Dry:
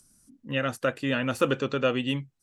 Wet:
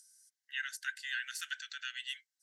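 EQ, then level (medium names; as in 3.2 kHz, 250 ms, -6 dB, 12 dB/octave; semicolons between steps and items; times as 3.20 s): rippled Chebyshev high-pass 1.5 kHz, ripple 6 dB; peaking EQ 2.4 kHz -14.5 dB 0.26 oct; +2.0 dB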